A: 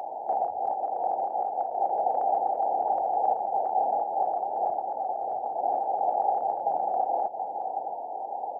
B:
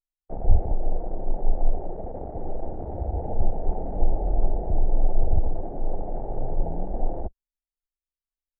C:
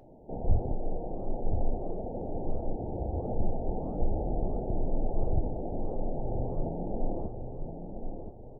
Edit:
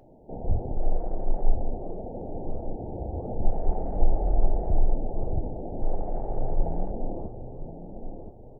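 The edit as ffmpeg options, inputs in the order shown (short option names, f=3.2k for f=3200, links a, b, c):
-filter_complex "[1:a]asplit=3[a][b][c];[2:a]asplit=4[d][e][f][g];[d]atrim=end=0.772[h];[a]atrim=start=0.768:end=1.552[i];[e]atrim=start=1.548:end=3.452[j];[b]atrim=start=3.448:end=4.942[k];[f]atrim=start=4.938:end=5.822[l];[c]atrim=start=5.818:end=6.912[m];[g]atrim=start=6.908[n];[h][i]acrossfade=d=0.004:c1=hsin:c2=hsin[o];[o][j]acrossfade=d=0.004:c1=hsin:c2=hsin[p];[p][k]acrossfade=d=0.004:c1=hsin:c2=hsin[q];[q][l]acrossfade=d=0.004:c1=hsin:c2=hsin[r];[r][m]acrossfade=d=0.004:c1=hsin:c2=hsin[s];[s][n]acrossfade=d=0.004:c1=hsin:c2=hsin"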